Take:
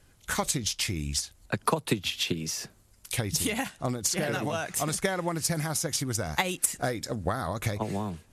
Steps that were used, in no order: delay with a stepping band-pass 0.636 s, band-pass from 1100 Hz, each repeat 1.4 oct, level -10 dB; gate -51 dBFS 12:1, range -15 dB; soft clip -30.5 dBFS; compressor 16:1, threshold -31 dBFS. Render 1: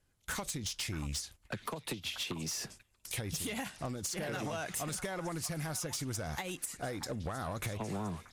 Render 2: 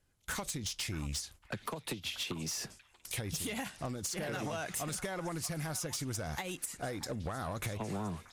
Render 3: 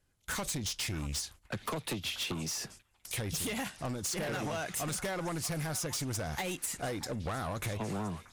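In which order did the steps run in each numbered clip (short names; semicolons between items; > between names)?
compressor > delay with a stepping band-pass > soft clip > gate; compressor > gate > soft clip > delay with a stepping band-pass; soft clip > delay with a stepping band-pass > compressor > gate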